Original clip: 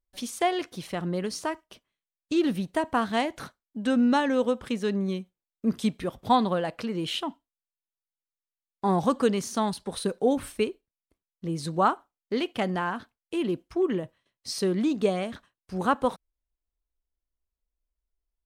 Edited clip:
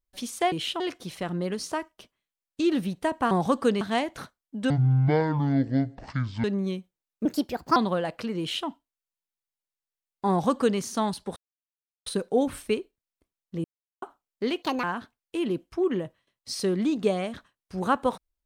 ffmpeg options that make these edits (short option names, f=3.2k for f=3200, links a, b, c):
-filter_complex "[0:a]asplit=14[a][b][c][d][e][f][g][h][i][j][k][l][m][n];[a]atrim=end=0.522[o];[b]atrim=start=6.988:end=7.272[p];[c]atrim=start=0.518:end=3.032[q];[d]atrim=start=8.888:end=9.392[r];[e]atrim=start=3.028:end=3.924[s];[f]atrim=start=3.92:end=4.86,asetpts=PTS-STARTPTS,asetrate=23814,aresample=44100[t];[g]atrim=start=4.856:end=5.674[u];[h]atrim=start=5.67:end=6.36,asetpts=PTS-STARTPTS,asetrate=59535,aresample=44100[v];[i]atrim=start=6.356:end=9.96,asetpts=PTS-STARTPTS,afade=t=out:st=3.6:d=0.004:c=hsin,apad=pad_dur=0.7[w];[j]atrim=start=9.96:end=11.54,asetpts=PTS-STARTPTS,afade=t=in:d=0.004:c=hsin,afade=t=out:st=1.576:d=0.004:c=hsin[x];[k]atrim=start=11.54:end=11.92,asetpts=PTS-STARTPTS,volume=0[y];[l]atrim=start=11.92:end=12.524,asetpts=PTS-STARTPTS,afade=t=in:d=0.004:c=hsin[z];[m]atrim=start=12.52:end=12.82,asetpts=PTS-STARTPTS,asetrate=62181,aresample=44100[aa];[n]atrim=start=12.816[ab];[o][p]acrossfade=d=0.004:c1=hsin:c2=hsin[ac];[ac][q]acrossfade=d=0.004:c1=hsin:c2=hsin[ad];[ad][r]acrossfade=d=0.004:c1=hsin:c2=hsin[ae];[ae][s]acrossfade=d=0.004:c1=hsin:c2=hsin[af];[af][t]acrossfade=d=0.004:c1=hsin:c2=hsin[ag];[ag][u]acrossfade=d=0.004:c1=hsin:c2=hsin[ah];[ah][v]acrossfade=d=0.004:c1=hsin:c2=hsin[ai];[w][x][y][z]concat=n=4:v=0:a=1[aj];[ai][aj]acrossfade=d=0.004:c1=hsin:c2=hsin[ak];[ak][aa]acrossfade=d=0.004:c1=hsin:c2=hsin[al];[al][ab]acrossfade=d=0.004:c1=hsin:c2=hsin"